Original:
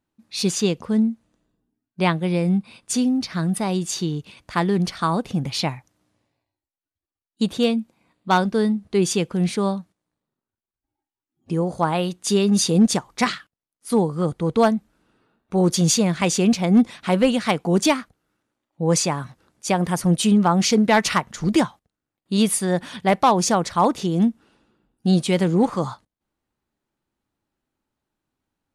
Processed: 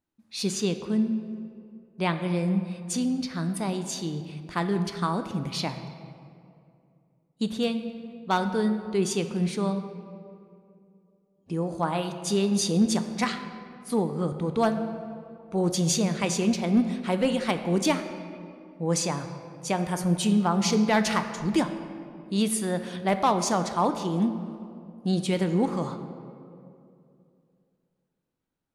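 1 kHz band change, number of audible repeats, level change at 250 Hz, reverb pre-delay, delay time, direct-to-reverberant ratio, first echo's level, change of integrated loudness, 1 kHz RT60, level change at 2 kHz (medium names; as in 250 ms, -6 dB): -6.0 dB, no echo, -5.5 dB, 3 ms, no echo, 7.5 dB, no echo, -6.0 dB, 2.3 s, -6.0 dB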